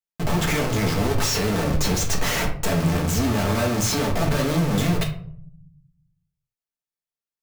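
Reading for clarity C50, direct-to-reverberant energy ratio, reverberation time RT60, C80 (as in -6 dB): 8.0 dB, -1.5 dB, 0.60 s, 13.0 dB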